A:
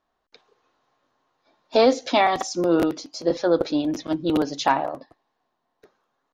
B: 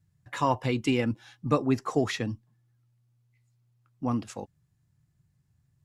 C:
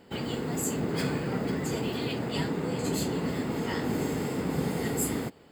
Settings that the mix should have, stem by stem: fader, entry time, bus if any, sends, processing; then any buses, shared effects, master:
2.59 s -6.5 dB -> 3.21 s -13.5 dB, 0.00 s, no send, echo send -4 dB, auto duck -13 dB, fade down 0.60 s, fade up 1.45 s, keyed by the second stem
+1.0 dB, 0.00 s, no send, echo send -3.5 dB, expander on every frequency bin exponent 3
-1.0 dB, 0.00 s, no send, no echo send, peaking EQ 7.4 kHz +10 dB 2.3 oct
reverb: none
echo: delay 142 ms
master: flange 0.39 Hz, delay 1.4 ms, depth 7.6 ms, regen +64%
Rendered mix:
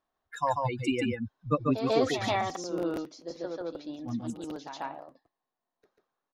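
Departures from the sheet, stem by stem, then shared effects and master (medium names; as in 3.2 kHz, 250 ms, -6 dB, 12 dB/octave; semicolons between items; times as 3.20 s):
stem C: muted; master: missing flange 0.39 Hz, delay 1.4 ms, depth 7.6 ms, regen +64%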